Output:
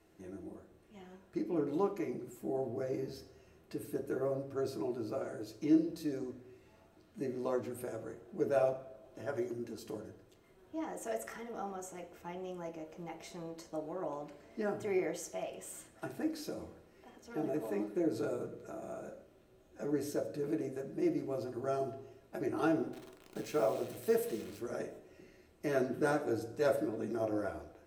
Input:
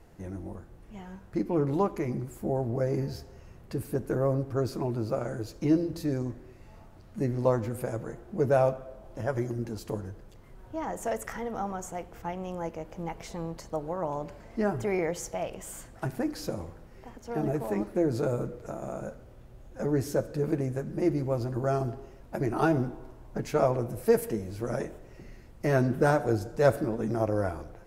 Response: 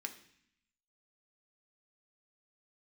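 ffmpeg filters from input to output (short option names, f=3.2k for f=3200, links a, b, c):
-filter_complex "[0:a]asettb=1/sr,asplit=3[a][b][c];[a]atrim=end=22.934[d];[b]atrim=start=22.93:end=24.59,asetpts=PTS-STARTPTS,afade=t=in:d=0.004:c=qsin,afade=t=out:st=1.656:d=0.004:c=qsin,acrusher=bits=8:dc=4:mix=0:aa=0.000001[e];[c]atrim=start=24.586[f];[d][e]acrossfade=d=0.004:c1=hsin:c2=qsin[g];[g][f]acrossfade=d=0.004:c1=qsin:c2=hsin[h];[1:a]atrim=start_sample=2205,asetrate=70560,aresample=44100[i];[h][i]afir=irnorm=-1:irlink=0"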